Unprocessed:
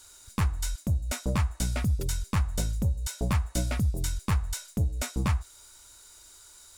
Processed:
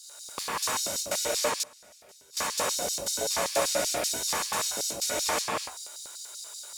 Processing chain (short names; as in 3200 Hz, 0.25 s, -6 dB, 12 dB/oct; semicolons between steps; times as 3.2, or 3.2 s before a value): non-linear reverb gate 0.39 s flat, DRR -7.5 dB; 1.58–2.37 flipped gate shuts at -13 dBFS, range -25 dB; LFO high-pass square 5.2 Hz 570–4600 Hz